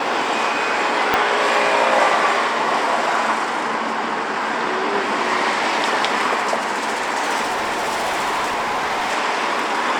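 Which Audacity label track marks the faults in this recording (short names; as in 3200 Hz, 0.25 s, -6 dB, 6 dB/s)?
1.140000	1.140000	pop -3 dBFS
7.420000	9.130000	clipped -18 dBFS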